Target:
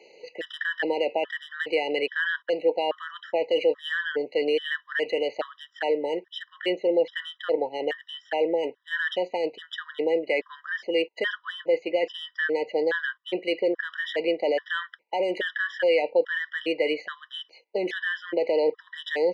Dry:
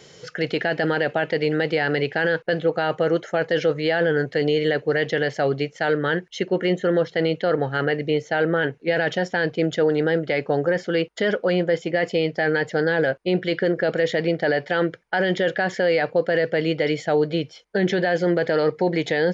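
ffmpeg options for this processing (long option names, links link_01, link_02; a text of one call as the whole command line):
ffmpeg -i in.wav -af "highpass=frequency=360:width=0.5412,highpass=frequency=360:width=1.3066,equalizer=frequency=400:width_type=q:width=4:gain=-5,equalizer=frequency=710:width_type=q:width=4:gain=-6,equalizer=frequency=1400:width_type=q:width=4:gain=-6,equalizer=frequency=2200:width_type=q:width=4:gain=-9,lowpass=frequency=3300:width=0.5412,lowpass=frequency=3300:width=1.3066,aexciter=amount=1.2:drive=8.5:freq=2000,afftfilt=real='re*gt(sin(2*PI*1.2*pts/sr)*(1-2*mod(floor(b*sr/1024/980),2)),0)':imag='im*gt(sin(2*PI*1.2*pts/sr)*(1-2*mod(floor(b*sr/1024/980),2)),0)':win_size=1024:overlap=0.75,volume=1.5dB" out.wav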